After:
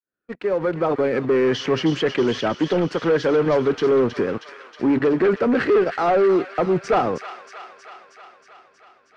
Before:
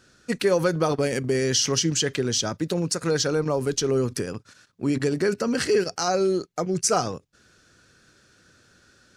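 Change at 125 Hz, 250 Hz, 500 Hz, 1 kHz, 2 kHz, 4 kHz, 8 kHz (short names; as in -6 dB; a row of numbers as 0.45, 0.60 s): -1.5 dB, +5.0 dB, +5.5 dB, +6.0 dB, +3.5 dB, -4.5 dB, under -15 dB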